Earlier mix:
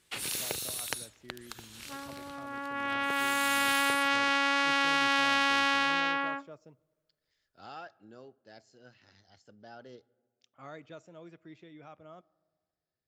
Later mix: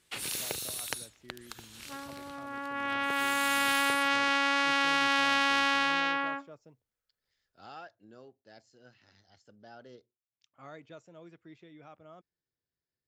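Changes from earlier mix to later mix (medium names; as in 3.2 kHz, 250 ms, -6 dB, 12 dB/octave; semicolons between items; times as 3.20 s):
speech: send off; first sound: send -6.5 dB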